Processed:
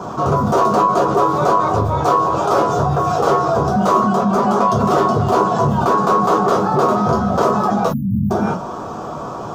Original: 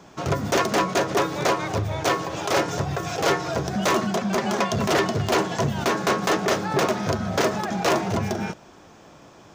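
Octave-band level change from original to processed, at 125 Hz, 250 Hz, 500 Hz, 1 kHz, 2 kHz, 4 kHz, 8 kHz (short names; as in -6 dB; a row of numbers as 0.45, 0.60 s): +7.5, +7.5, +7.0, +11.0, -2.0, -4.5, -3.5 dB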